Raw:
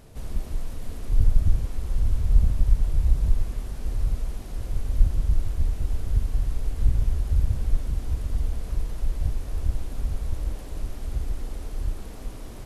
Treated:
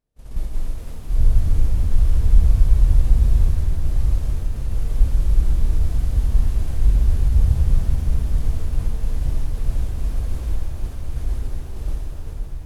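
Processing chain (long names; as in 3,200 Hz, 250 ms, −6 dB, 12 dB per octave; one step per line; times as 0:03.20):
downward expander −23 dBFS
reverb with rising layers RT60 4 s, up +7 semitones, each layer −8 dB, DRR −2.5 dB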